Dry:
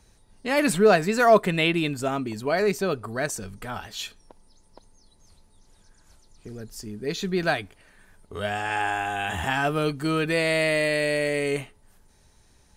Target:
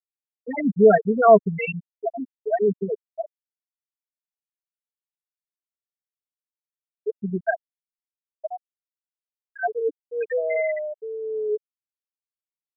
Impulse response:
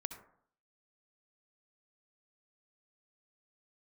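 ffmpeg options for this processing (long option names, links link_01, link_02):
-af "aecho=1:1:4.4:0.72,afftfilt=real='re*gte(hypot(re,im),0.501)':imag='im*gte(hypot(re,im),0.501)':win_size=1024:overlap=0.75"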